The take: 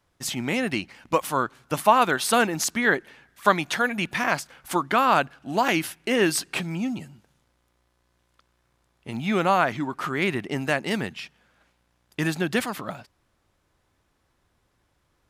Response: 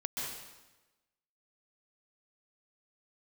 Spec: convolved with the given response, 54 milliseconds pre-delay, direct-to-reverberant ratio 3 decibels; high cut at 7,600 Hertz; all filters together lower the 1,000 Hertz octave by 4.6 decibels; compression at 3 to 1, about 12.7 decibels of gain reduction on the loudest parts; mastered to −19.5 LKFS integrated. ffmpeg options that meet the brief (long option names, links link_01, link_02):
-filter_complex "[0:a]lowpass=7600,equalizer=frequency=1000:width_type=o:gain=-6,acompressor=threshold=-34dB:ratio=3,asplit=2[link_01][link_02];[1:a]atrim=start_sample=2205,adelay=54[link_03];[link_02][link_03]afir=irnorm=-1:irlink=0,volume=-6dB[link_04];[link_01][link_04]amix=inputs=2:normalize=0,volume=14.5dB"